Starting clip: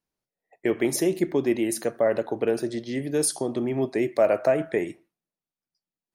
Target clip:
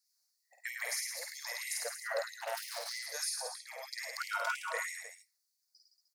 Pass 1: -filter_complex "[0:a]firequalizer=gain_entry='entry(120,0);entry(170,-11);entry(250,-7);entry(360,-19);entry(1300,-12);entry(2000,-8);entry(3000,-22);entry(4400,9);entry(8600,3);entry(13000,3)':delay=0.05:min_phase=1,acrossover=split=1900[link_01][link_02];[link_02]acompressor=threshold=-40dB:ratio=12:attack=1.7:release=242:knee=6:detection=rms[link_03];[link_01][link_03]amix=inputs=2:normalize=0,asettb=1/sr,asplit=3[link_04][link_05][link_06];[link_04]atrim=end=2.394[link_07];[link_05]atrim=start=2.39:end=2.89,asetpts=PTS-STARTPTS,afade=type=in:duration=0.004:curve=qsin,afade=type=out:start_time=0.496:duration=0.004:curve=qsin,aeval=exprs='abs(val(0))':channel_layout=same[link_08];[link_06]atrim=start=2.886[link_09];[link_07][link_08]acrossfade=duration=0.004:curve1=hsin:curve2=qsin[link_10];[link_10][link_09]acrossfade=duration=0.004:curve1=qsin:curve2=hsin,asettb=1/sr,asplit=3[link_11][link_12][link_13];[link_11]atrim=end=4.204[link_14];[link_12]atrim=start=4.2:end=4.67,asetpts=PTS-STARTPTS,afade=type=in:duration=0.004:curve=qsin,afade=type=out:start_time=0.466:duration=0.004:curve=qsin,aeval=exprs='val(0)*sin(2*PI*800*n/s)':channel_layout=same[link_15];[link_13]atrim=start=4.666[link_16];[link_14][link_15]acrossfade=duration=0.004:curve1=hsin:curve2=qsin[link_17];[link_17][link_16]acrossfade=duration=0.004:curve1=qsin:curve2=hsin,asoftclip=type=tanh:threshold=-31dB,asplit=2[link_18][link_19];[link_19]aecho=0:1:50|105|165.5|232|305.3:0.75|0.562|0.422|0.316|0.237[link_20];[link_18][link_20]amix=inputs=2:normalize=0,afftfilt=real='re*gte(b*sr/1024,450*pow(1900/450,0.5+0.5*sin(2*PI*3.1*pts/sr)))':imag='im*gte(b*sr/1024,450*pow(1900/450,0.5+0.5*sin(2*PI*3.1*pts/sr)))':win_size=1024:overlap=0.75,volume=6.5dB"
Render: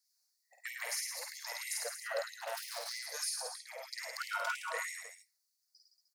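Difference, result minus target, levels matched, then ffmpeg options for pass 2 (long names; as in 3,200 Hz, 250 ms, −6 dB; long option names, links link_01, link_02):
soft clipping: distortion +13 dB
-filter_complex "[0:a]firequalizer=gain_entry='entry(120,0);entry(170,-11);entry(250,-7);entry(360,-19);entry(1300,-12);entry(2000,-8);entry(3000,-22);entry(4400,9);entry(8600,3);entry(13000,3)':delay=0.05:min_phase=1,acrossover=split=1900[link_01][link_02];[link_02]acompressor=threshold=-40dB:ratio=12:attack=1.7:release=242:knee=6:detection=rms[link_03];[link_01][link_03]amix=inputs=2:normalize=0,asettb=1/sr,asplit=3[link_04][link_05][link_06];[link_04]atrim=end=2.394[link_07];[link_05]atrim=start=2.39:end=2.89,asetpts=PTS-STARTPTS,afade=type=in:duration=0.004:curve=qsin,afade=type=out:start_time=0.496:duration=0.004:curve=qsin,aeval=exprs='abs(val(0))':channel_layout=same[link_08];[link_06]atrim=start=2.886[link_09];[link_07][link_08]acrossfade=duration=0.004:curve1=hsin:curve2=qsin[link_10];[link_10][link_09]acrossfade=duration=0.004:curve1=qsin:curve2=hsin,asettb=1/sr,asplit=3[link_11][link_12][link_13];[link_11]atrim=end=4.204[link_14];[link_12]atrim=start=4.2:end=4.67,asetpts=PTS-STARTPTS,afade=type=in:duration=0.004:curve=qsin,afade=type=out:start_time=0.466:duration=0.004:curve=qsin,aeval=exprs='val(0)*sin(2*PI*800*n/s)':channel_layout=same[link_15];[link_13]atrim=start=4.666[link_16];[link_14][link_15]acrossfade=duration=0.004:curve1=hsin:curve2=qsin[link_17];[link_17][link_16]acrossfade=duration=0.004:curve1=qsin:curve2=hsin,asoftclip=type=tanh:threshold=-23dB,asplit=2[link_18][link_19];[link_19]aecho=0:1:50|105|165.5|232|305.3:0.75|0.562|0.422|0.316|0.237[link_20];[link_18][link_20]amix=inputs=2:normalize=0,afftfilt=real='re*gte(b*sr/1024,450*pow(1900/450,0.5+0.5*sin(2*PI*3.1*pts/sr)))':imag='im*gte(b*sr/1024,450*pow(1900/450,0.5+0.5*sin(2*PI*3.1*pts/sr)))':win_size=1024:overlap=0.75,volume=6.5dB"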